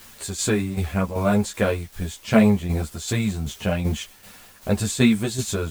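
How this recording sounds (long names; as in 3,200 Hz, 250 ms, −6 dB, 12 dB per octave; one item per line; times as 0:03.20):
a quantiser's noise floor 8 bits, dither triangular
tremolo saw down 2.6 Hz, depth 60%
a shimmering, thickened sound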